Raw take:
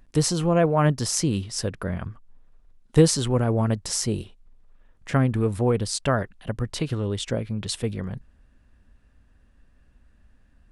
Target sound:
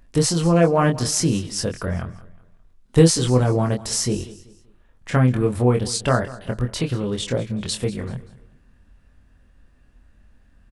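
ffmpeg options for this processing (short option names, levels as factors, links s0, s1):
-filter_complex "[0:a]asplit=2[s0][s1];[s1]adelay=24,volume=0.631[s2];[s0][s2]amix=inputs=2:normalize=0,aecho=1:1:192|384|576:0.126|0.0428|0.0146,volume=1.26"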